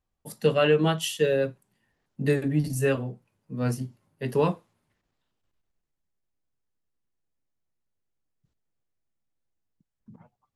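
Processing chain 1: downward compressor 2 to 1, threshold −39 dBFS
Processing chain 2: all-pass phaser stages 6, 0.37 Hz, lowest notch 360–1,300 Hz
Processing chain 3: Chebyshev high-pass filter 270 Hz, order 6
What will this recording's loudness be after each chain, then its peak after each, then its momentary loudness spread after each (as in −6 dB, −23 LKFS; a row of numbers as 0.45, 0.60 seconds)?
−36.5, −29.0, −27.5 LKFS; −20.5, −11.0, −12.0 dBFS; 19, 16, 15 LU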